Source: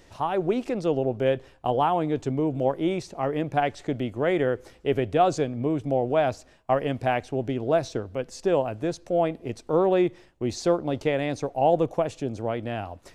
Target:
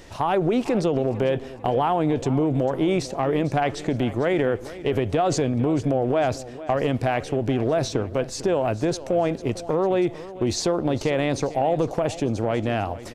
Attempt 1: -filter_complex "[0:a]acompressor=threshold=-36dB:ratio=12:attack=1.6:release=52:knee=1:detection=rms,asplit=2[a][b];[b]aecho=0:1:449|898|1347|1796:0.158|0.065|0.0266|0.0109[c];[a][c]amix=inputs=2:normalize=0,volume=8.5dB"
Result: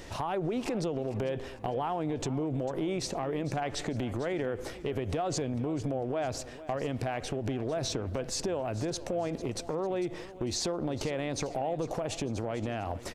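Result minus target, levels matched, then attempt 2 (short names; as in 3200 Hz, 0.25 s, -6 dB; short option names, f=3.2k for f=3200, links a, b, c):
compressor: peak gain reduction +10.5 dB
-filter_complex "[0:a]acompressor=threshold=-24.5dB:ratio=12:attack=1.6:release=52:knee=1:detection=rms,asplit=2[a][b];[b]aecho=0:1:449|898|1347|1796:0.158|0.065|0.0266|0.0109[c];[a][c]amix=inputs=2:normalize=0,volume=8.5dB"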